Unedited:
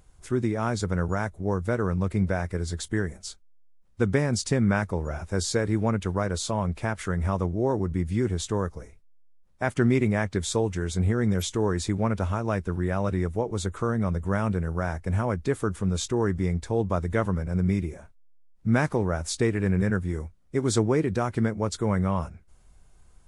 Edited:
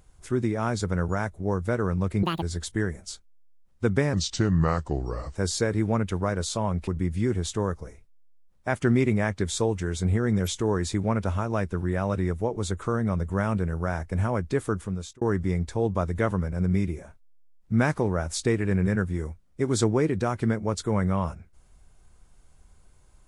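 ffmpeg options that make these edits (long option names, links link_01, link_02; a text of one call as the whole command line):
ffmpeg -i in.wav -filter_complex "[0:a]asplit=7[link_01][link_02][link_03][link_04][link_05][link_06][link_07];[link_01]atrim=end=2.234[link_08];[link_02]atrim=start=2.23:end=2.59,asetpts=PTS-STARTPTS,asetrate=82908,aresample=44100[link_09];[link_03]atrim=start=2.586:end=4.304[link_10];[link_04]atrim=start=4.3:end=5.29,asetpts=PTS-STARTPTS,asetrate=35721,aresample=44100[link_11];[link_05]atrim=start=5.286:end=6.812[link_12];[link_06]atrim=start=7.818:end=16.16,asetpts=PTS-STARTPTS,afade=type=out:start_time=7.842:duration=0.5[link_13];[link_07]atrim=start=16.16,asetpts=PTS-STARTPTS,afade=type=in:duration=0.004:curve=hsin[link_14];[link_08][link_09]acrossfade=duration=0.004:curve1=hsin:curve2=hsin[link_15];[link_15][link_10]acrossfade=duration=0.004:curve1=hsin:curve2=hsin[link_16];[link_16][link_11]acrossfade=duration=0.004:curve1=hsin:curve2=hsin[link_17];[link_17][link_12]acrossfade=duration=0.004:curve1=hsin:curve2=hsin[link_18];[link_13][link_14]concat=n=2:v=0:a=1[link_19];[link_18][link_19]acrossfade=duration=0.004:curve1=hsin:curve2=hsin" out.wav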